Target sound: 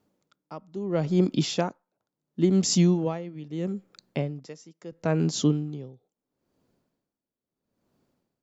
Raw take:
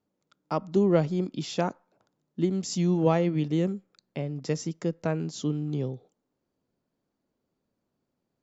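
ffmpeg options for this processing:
-filter_complex "[0:a]asettb=1/sr,asplit=3[s0][s1][s2];[s0]atrim=end=4.464[s3];[s1]atrim=start=4.46:end=4.92,asetpts=PTS-STARTPTS,afade=t=in:d=0.004:c=qsin,afade=t=out:st=0.456:d=0.004:c=qsin,highpass=f=360:p=1[s4];[s2]atrim=start=4.916[s5];[s3][s4]acrossfade=d=0.004:c1=hsin:c2=qsin[s6];[s6][s5]acrossfade=d=0.004:c1=qsin:c2=hsin,aeval=exprs='val(0)*pow(10,-22*(0.5-0.5*cos(2*PI*0.75*n/s))/20)':c=same,volume=2.82"

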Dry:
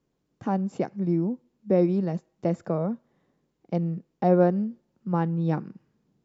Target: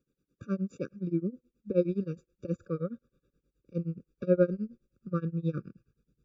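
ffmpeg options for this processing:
-af "tremolo=f=9.5:d=0.95,asubboost=boost=8.5:cutoff=70,afftfilt=real='re*eq(mod(floor(b*sr/1024/560),2),0)':imag='im*eq(mod(floor(b*sr/1024/560),2),0)':win_size=1024:overlap=0.75"

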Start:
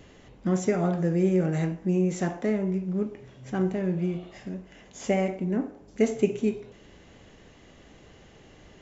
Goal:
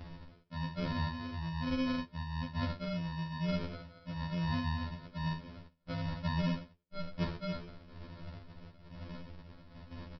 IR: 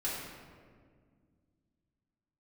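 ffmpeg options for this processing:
-filter_complex "[0:a]bandreject=f=2900:w=16,acrossover=split=880[s0][s1];[s1]adelay=80[s2];[s0][s2]amix=inputs=2:normalize=0,areverse,acompressor=threshold=0.0141:ratio=8,areverse,asetrate=38146,aresample=44100,aphaser=in_gain=1:out_gain=1:delay=1.9:decay=0.46:speed=1.1:type=sinusoidal,aresample=11025,acrusher=samples=28:mix=1:aa=0.000001,aresample=44100,agate=range=0.0224:threshold=0.00398:ratio=3:detection=peak,afftfilt=real='re*2*eq(mod(b,4),0)':imag='im*2*eq(mod(b,4),0)':win_size=2048:overlap=0.75,volume=1.68"

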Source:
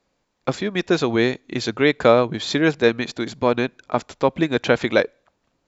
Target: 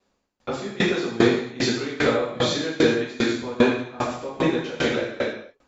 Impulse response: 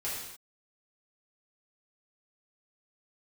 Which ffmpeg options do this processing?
-filter_complex "[0:a]alimiter=limit=0.282:level=0:latency=1:release=70[s0];[1:a]atrim=start_sample=2205,asetrate=26019,aresample=44100[s1];[s0][s1]afir=irnorm=-1:irlink=0,aeval=exprs='val(0)*pow(10,-21*if(lt(mod(2.5*n/s,1),2*abs(2.5)/1000),1-mod(2.5*n/s,1)/(2*abs(2.5)/1000),(mod(2.5*n/s,1)-2*abs(2.5)/1000)/(1-2*abs(2.5)/1000))/20)':c=same"

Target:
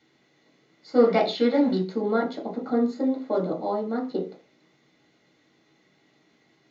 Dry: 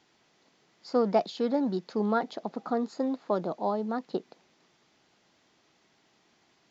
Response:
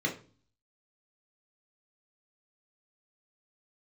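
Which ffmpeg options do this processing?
-filter_complex "[0:a]asplit=3[s0][s1][s2];[s0]afade=t=out:st=0.95:d=0.02[s3];[s1]equalizer=f=2400:t=o:w=2.5:g=10.5,afade=t=in:st=0.95:d=0.02,afade=t=out:st=1.79:d=0.02[s4];[s2]afade=t=in:st=1.79:d=0.02[s5];[s3][s4][s5]amix=inputs=3:normalize=0[s6];[1:a]atrim=start_sample=2205,afade=t=out:st=0.23:d=0.01,atrim=end_sample=10584[s7];[s6][s7]afir=irnorm=-1:irlink=0,volume=0.562"

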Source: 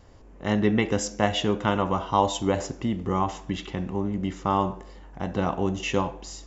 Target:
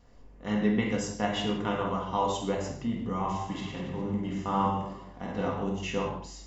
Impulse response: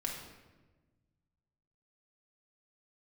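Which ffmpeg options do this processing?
-filter_complex "[0:a]asettb=1/sr,asplit=3[s0][s1][s2];[s0]atrim=end=3.204[s3];[s1]atrim=start=3.2:end=5.48,asetpts=PTS-STARTPTS,afade=t=in:d=0.004:c=qsin,afade=t=out:st=2.276:d=0.004:c=qsin,aecho=1:1:50|112.5|190.6|288.3|410.4:0.631|0.398|0.251|0.158|0.1,atrim=end_sample=100548[s4];[s2]atrim=start=5.476[s5];[s3][s4]acrossfade=d=0.004:c1=hsin:c2=qsin[s6];[s6][s5]acrossfade=d=0.004:c1=qsin:c2=hsin[s7];[1:a]atrim=start_sample=2205,afade=t=out:st=0.24:d=0.01,atrim=end_sample=11025[s8];[s7][s8]afir=irnorm=-1:irlink=0,flanger=delay=0.9:depth=6.9:regen=-79:speed=1.9:shape=sinusoidal,volume=0.75"

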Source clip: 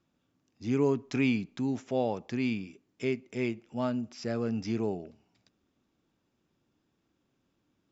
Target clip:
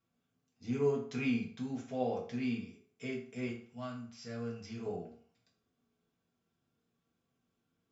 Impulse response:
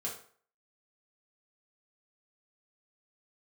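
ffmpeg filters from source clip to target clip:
-filter_complex "[0:a]asetnsamples=n=441:p=0,asendcmd='3.48 equalizer g -13.5;4.86 equalizer g -2.5',equalizer=f=360:t=o:w=2.2:g=-3[s0];[1:a]atrim=start_sample=2205[s1];[s0][s1]afir=irnorm=-1:irlink=0,volume=0.501"

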